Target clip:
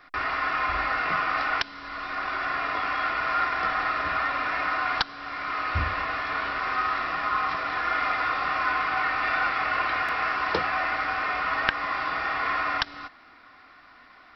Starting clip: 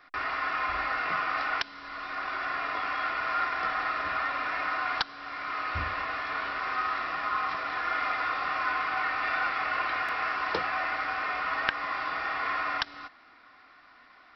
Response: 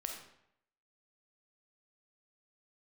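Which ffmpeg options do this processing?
-af "lowshelf=frequency=210:gain=5.5,volume=3.5dB"

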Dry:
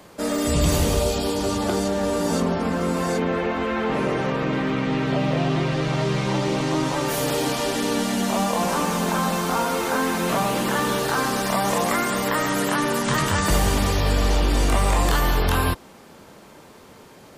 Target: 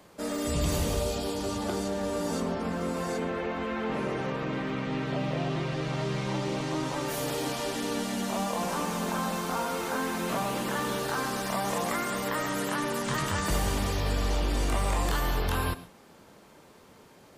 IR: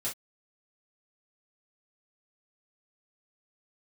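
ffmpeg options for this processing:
-filter_complex "[0:a]asplit=2[link_01][link_02];[1:a]atrim=start_sample=2205,adelay=96[link_03];[link_02][link_03]afir=irnorm=-1:irlink=0,volume=-18dB[link_04];[link_01][link_04]amix=inputs=2:normalize=0,volume=-8dB"

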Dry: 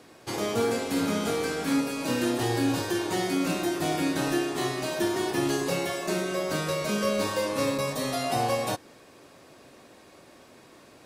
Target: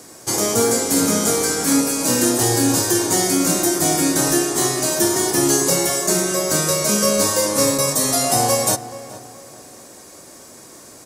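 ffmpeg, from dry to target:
ffmpeg -i in.wav -filter_complex "[0:a]highshelf=frequency=4800:width_type=q:width=1.5:gain=11.5,bandreject=frequency=2600:width=16,asplit=2[link_01][link_02];[link_02]adelay=426,lowpass=frequency=2200:poles=1,volume=-14.5dB,asplit=2[link_03][link_04];[link_04]adelay=426,lowpass=frequency=2200:poles=1,volume=0.37,asplit=2[link_05][link_06];[link_06]adelay=426,lowpass=frequency=2200:poles=1,volume=0.37[link_07];[link_01][link_03][link_05][link_07]amix=inputs=4:normalize=0,volume=7.5dB" out.wav

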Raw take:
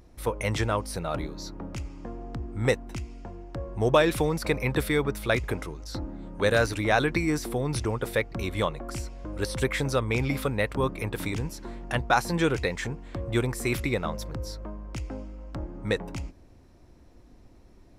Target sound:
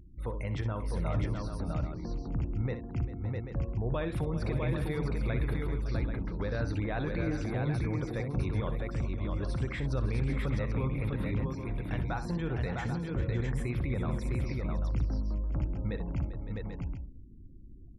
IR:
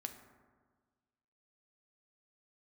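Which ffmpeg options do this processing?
-af "bass=frequency=250:gain=9,treble=frequency=4000:gain=-2,alimiter=limit=-18.5dB:level=0:latency=1:release=63,highshelf=frequency=3800:gain=-8,afftfilt=real='re*gte(hypot(re,im),0.00562)':imag='im*gte(hypot(re,im),0.00562)':win_size=1024:overlap=0.75,aecho=1:1:62|395|560|655|788:0.299|0.188|0.224|0.668|0.355,volume=-6.5dB"

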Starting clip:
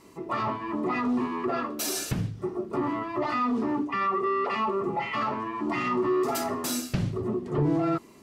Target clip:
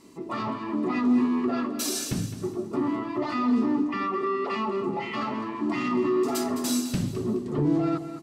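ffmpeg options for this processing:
ffmpeg -i in.wav -af "equalizer=frequency=250:width_type=o:width=1:gain=9,equalizer=frequency=4000:width_type=o:width=1:gain=5,equalizer=frequency=8000:width_type=o:width=1:gain=5,aecho=1:1:211|422|633|844:0.282|0.093|0.0307|0.0101,volume=-4dB" out.wav

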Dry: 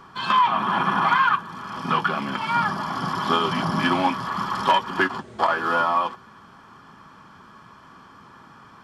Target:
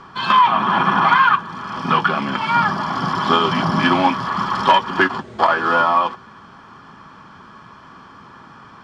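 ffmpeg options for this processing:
ffmpeg -i in.wav -af "lowpass=6300,volume=5.5dB" out.wav

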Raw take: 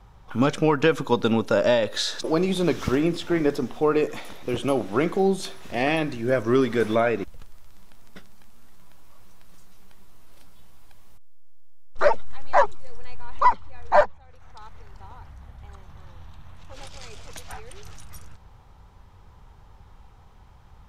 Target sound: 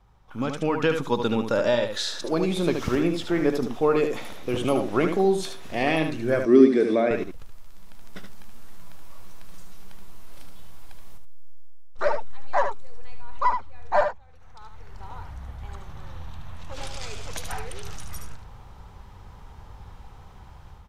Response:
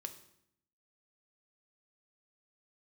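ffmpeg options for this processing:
-filter_complex "[0:a]aecho=1:1:75:0.447,dynaudnorm=framelen=460:gausssize=3:maxgain=13.5dB,asettb=1/sr,asplit=3[link_01][link_02][link_03];[link_01]atrim=end=6.454[link_04];[link_02]atrim=start=6.45:end=7.11,asetpts=PTS-STARTPTS,afade=type=in:duration=0.004:curve=qsin,afade=type=out:start_time=0.656:duration=0.004:curve=qsin,highpass=230,equalizer=frequency=260:width_type=q:width=4:gain=10,equalizer=frequency=380:width_type=q:width=4:gain=6,equalizer=frequency=960:width_type=q:width=4:gain=-9,equalizer=frequency=1400:width_type=q:width=4:gain=-9,equalizer=frequency=3000:width_type=q:width=4:gain=-9,equalizer=frequency=6800:width_type=q:width=4:gain=-8,lowpass=frequency=8600:width=0.5412,lowpass=frequency=8600:width=1.3066[link_05];[link_03]atrim=start=7.106[link_06];[link_04][link_05]acrossfade=duration=0.004:curve1=hsin:curve2=qsin[link_07];[link_07][link_06]acrossfade=duration=0.004:curve1=qsin:curve2=hsin,volume=-8.5dB"

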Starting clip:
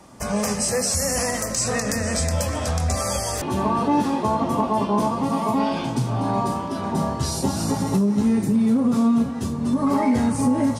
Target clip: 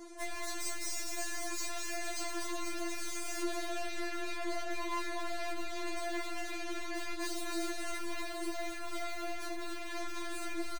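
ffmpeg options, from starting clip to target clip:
ffmpeg -i in.wav -filter_complex "[0:a]asplit=2[link_01][link_02];[link_02]adynamicsmooth=sensitivity=7.5:basefreq=980,volume=-2dB[link_03];[link_01][link_03]amix=inputs=2:normalize=0,equalizer=frequency=180:width=0.49:gain=-4.5,acrossover=split=220|1300[link_04][link_05][link_06];[link_04]aeval=exprs='(mod(17.8*val(0)+1,2)-1)/17.8':channel_layout=same[link_07];[link_07][link_05][link_06]amix=inputs=3:normalize=0,alimiter=limit=-12dB:level=0:latency=1:release=304,aecho=1:1:257|514|771|1028:0.422|0.122|0.0355|0.0103,asplit=2[link_08][link_09];[link_09]asetrate=37084,aresample=44100,atempo=1.18921,volume=-14dB[link_10];[link_08][link_10]amix=inputs=2:normalize=0,highpass=110,aeval=exprs='(tanh(70.8*val(0)+0.2)-tanh(0.2))/70.8':channel_layout=same,equalizer=frequency=12000:width=3.2:gain=-10,asplit=2[link_11][link_12];[link_12]adelay=15,volume=-6dB[link_13];[link_11][link_13]amix=inputs=2:normalize=0,afftfilt=real='re*4*eq(mod(b,16),0)':imag='im*4*eq(mod(b,16),0)':win_size=2048:overlap=0.75,volume=1.5dB" out.wav

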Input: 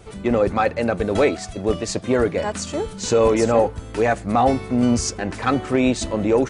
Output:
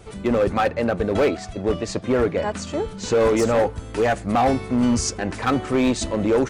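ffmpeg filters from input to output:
ffmpeg -i in.wav -filter_complex "[0:a]asettb=1/sr,asplit=3[link_01][link_02][link_03];[link_01]atrim=end=0.684[link_04];[link_02]atrim=start=0.68:end=3.2,asetpts=PTS-STARTPTS,afade=type=in:duration=0.004:curve=qsin,afade=type=out:start_time=2.516:duration=0.004:curve=qsin,lowpass=frequency=3700:poles=1[link_05];[link_03]atrim=start=3.196[link_06];[link_04][link_05]acrossfade=duration=0.004:curve1=hsin:curve2=qsin[link_07];[link_07][link_06]acrossfade=duration=0.004:curve1=qsin:curve2=hsin,volume=13.5dB,asoftclip=hard,volume=-13.5dB" out.wav

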